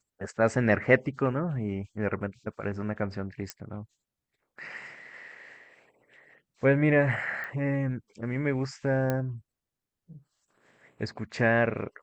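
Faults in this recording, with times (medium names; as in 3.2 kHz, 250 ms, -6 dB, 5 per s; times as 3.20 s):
3.50 s: pop -18 dBFS
7.44 s: pop -25 dBFS
9.10 s: pop -15 dBFS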